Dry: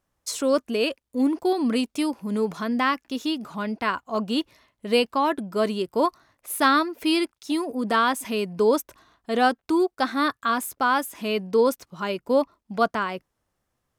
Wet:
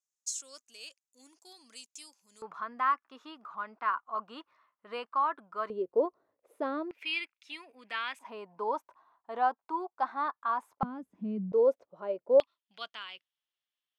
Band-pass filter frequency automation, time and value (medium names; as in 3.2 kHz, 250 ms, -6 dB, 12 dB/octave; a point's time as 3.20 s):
band-pass filter, Q 4.1
6.8 kHz
from 2.42 s 1.2 kHz
from 5.70 s 470 Hz
from 6.91 s 2.4 kHz
from 8.19 s 930 Hz
from 10.83 s 190 Hz
from 11.52 s 560 Hz
from 12.40 s 3.2 kHz